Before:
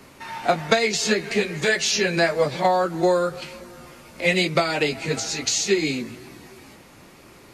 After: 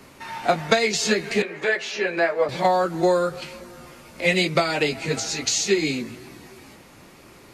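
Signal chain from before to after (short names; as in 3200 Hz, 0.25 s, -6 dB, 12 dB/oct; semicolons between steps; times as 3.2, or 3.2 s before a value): 1.42–2.49 three-band isolator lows -20 dB, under 280 Hz, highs -16 dB, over 2800 Hz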